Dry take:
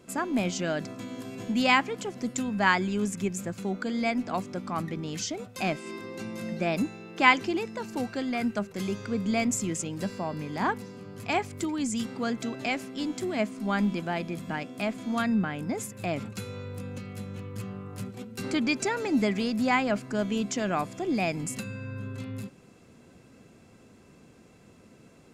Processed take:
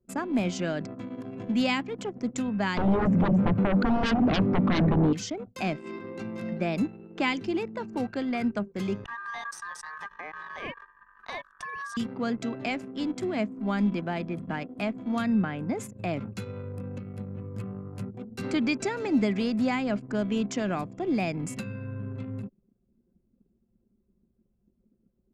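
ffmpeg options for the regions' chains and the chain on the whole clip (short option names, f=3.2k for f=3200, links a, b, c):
-filter_complex "[0:a]asettb=1/sr,asplit=3[a][b][c];[a]atrim=end=2.774[d];[b]atrim=start=2.77:end=5.13,asetpts=PTS-STARTPTS,afade=t=in:d=0.004:c=qsin,afade=t=out:st=2.356:d=0.004:c=qsin,lowpass=1k,bandreject=f=50:t=h:w=6,bandreject=f=100:t=h:w=6,bandreject=f=150:t=h:w=6,bandreject=f=200:t=h:w=6,bandreject=f=250:t=h:w=6,aeval=exprs='0.119*sin(PI/2*5.01*val(0)/0.119)':c=same[e];[c]atrim=start=5.126[f];[d][e]acrossfade=d=0.004:c1=hsin:c2=qsin[g];[g][f]acrossfade=d=0.004:c1=qsin:c2=hsin,asettb=1/sr,asplit=3[h][i][j];[h]atrim=end=9.044[k];[i]atrim=start=9.04:end=11.97,asetpts=PTS-STARTPTS,afade=t=in:d=0.004:c=qsin,afade=t=out:st=2.926:d=0.004:c=qsin,acompressor=threshold=-32dB:ratio=3:attack=3.2:release=140:knee=1:detection=peak,highpass=140,aeval=exprs='val(0)*sin(2*PI*1400*n/s)':c=same[l];[j]atrim=start=11.966[m];[k][l]acrossfade=d=0.004:c1=hsin:c2=qsin[n];[n][m]acrossfade=d=0.004:c1=qsin:c2=hsin,anlmdn=0.398,aemphasis=mode=reproduction:type=cd,acrossover=split=390|3000[o][p][q];[p]acompressor=threshold=-31dB:ratio=6[r];[o][r][q]amix=inputs=3:normalize=0,volume=1dB"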